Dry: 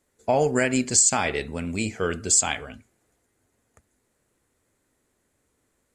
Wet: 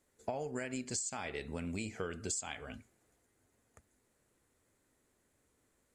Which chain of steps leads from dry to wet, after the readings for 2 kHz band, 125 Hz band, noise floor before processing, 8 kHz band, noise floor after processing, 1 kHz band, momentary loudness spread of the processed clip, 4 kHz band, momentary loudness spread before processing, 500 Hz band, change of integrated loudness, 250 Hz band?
−16.0 dB, −13.5 dB, −73 dBFS, −19.5 dB, −77 dBFS, −17.0 dB, 8 LU, −16.0 dB, 12 LU, −16.0 dB, −17.5 dB, −14.5 dB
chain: downward compressor 16 to 1, threshold −31 dBFS, peak gain reduction 17.5 dB
level −4 dB

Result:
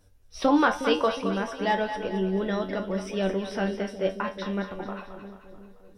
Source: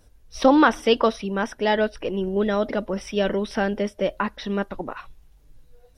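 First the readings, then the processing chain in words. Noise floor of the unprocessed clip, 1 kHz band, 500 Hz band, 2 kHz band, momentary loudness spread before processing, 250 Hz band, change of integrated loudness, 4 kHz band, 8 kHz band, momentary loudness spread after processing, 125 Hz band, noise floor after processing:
−55 dBFS, −3.5 dB, −5.0 dB, −4.0 dB, 10 LU, −4.0 dB, −4.5 dB, −4.5 dB, −4.0 dB, 14 LU, −1.5 dB, −54 dBFS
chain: tuned comb filter 95 Hz, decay 0.25 s, harmonics all, mix 80%
echo with a time of its own for lows and highs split 520 Hz, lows 362 ms, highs 219 ms, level −9 dB
level +2 dB

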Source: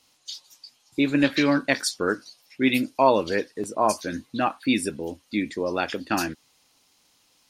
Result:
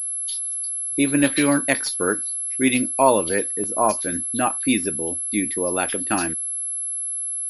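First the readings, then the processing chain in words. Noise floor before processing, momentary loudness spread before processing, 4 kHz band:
−64 dBFS, 12 LU, 0.0 dB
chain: switching amplifier with a slow clock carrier 11,000 Hz
level +2 dB

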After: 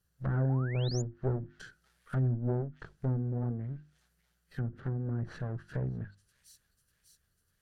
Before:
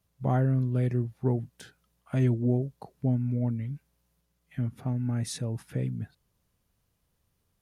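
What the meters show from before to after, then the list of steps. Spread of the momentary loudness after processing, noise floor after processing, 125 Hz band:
14 LU, −76 dBFS, −4.0 dB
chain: lower of the sound and its delayed copy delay 0.68 ms
delay with a high-pass on its return 596 ms, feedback 54%, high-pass 4,100 Hz, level −11.5 dB
treble cut that deepens with the level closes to 830 Hz, closed at −27 dBFS
parametric band 1,600 Hz +7.5 dB 0.7 octaves
mains-hum notches 50/100/150/200/250/300/350 Hz
sound drawn into the spectrogram rise, 0:00.49–0:01.02, 720–7,300 Hz −42 dBFS
graphic EQ with 15 bands 100 Hz −3 dB, 250 Hz −5 dB, 1,000 Hz −7 dB, 2,500 Hz −6 dB
gain on a spectral selection 0:02.19–0:02.48, 300–3,600 Hz −9 dB

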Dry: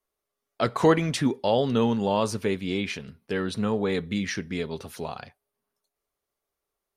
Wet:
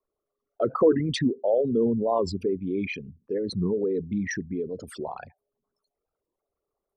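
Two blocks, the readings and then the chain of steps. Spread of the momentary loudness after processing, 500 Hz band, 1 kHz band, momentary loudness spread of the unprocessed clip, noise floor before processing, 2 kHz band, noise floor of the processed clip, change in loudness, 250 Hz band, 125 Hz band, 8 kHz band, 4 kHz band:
14 LU, +1.5 dB, −4.5 dB, 14 LU, below −85 dBFS, −4.5 dB, below −85 dBFS, −0.5 dB, −0.5 dB, −2.5 dB, −4.0 dB, −5.0 dB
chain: spectral envelope exaggerated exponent 3
wow of a warped record 45 rpm, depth 250 cents

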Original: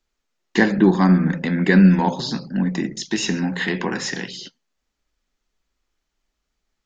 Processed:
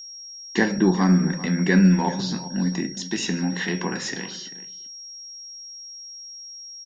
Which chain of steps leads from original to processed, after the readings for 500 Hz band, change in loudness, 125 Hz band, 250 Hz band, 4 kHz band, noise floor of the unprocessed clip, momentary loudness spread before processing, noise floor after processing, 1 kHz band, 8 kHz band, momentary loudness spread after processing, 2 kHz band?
−4.0 dB, −3.5 dB, −2.5 dB, −3.5 dB, 0.0 dB, −78 dBFS, 13 LU, −40 dBFS, −4.0 dB, can't be measured, 19 LU, −3.5 dB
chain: tuned comb filter 89 Hz, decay 0.26 s, harmonics all, mix 50%
slap from a distant wall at 67 metres, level −15 dB
steady tone 5,600 Hz −37 dBFS

